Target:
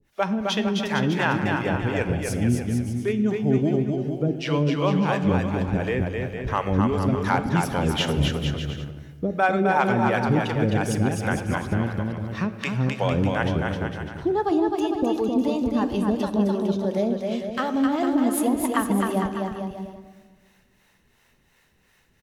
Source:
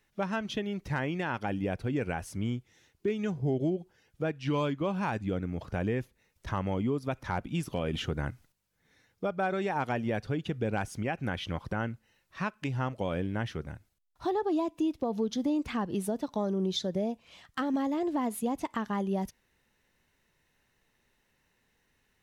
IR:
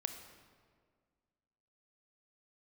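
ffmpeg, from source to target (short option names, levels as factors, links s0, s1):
-filter_complex "[0:a]acrossover=split=450[s0][s1];[s0]aeval=exprs='val(0)*(1-1/2+1/2*cos(2*PI*2.8*n/s))':c=same[s2];[s1]aeval=exprs='val(0)*(1-1/2-1/2*cos(2*PI*2.8*n/s))':c=same[s3];[s2][s3]amix=inputs=2:normalize=0,aecho=1:1:260|455|601.2|710.9|793.2:0.631|0.398|0.251|0.158|0.1,asplit=2[s4][s5];[1:a]atrim=start_sample=2205,asetrate=48510,aresample=44100[s6];[s5][s6]afir=irnorm=-1:irlink=0,volume=1.41[s7];[s4][s7]amix=inputs=2:normalize=0,volume=1.88"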